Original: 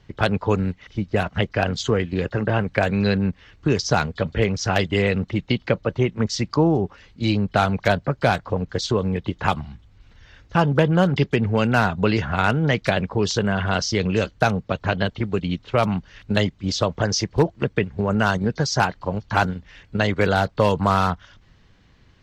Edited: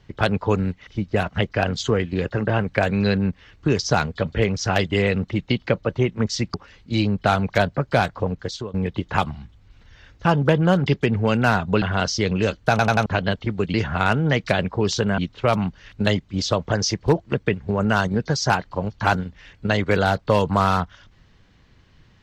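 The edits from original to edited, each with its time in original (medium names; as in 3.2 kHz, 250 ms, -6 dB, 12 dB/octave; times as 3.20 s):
6.54–6.84 s: delete
8.58–9.04 s: fade out, to -18 dB
12.12–13.56 s: move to 15.48 s
14.44 s: stutter in place 0.09 s, 4 plays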